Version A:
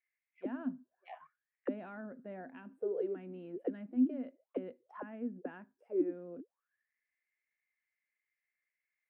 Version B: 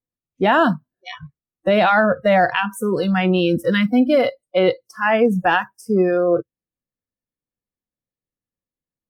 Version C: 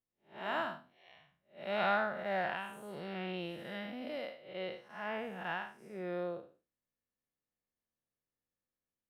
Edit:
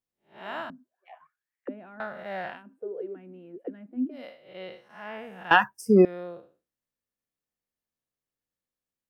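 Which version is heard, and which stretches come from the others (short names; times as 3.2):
C
0.7–2 from A
2.56–4.18 from A, crossfade 0.16 s
5.51–6.05 from B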